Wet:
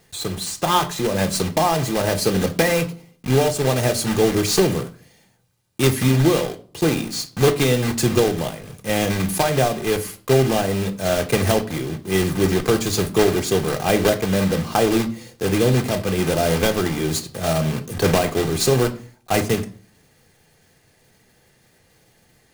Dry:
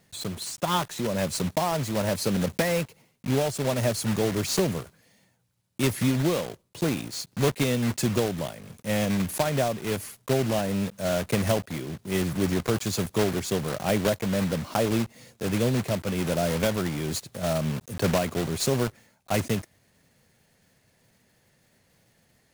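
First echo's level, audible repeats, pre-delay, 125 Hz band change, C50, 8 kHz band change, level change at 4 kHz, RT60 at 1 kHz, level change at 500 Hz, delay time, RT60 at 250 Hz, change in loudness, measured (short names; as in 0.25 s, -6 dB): none, none, 3 ms, +6.0 dB, 16.0 dB, +7.0 dB, +7.5 dB, 0.40 s, +7.5 dB, none, 0.60 s, +7.0 dB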